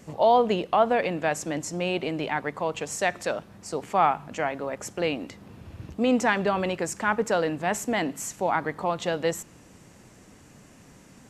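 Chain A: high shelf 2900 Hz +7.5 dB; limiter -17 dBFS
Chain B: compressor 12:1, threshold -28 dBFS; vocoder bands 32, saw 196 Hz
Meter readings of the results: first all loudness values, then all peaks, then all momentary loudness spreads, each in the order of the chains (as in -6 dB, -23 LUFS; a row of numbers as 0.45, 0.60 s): -28.5, -35.5 LUFS; -17.0, -18.0 dBFS; 7, 20 LU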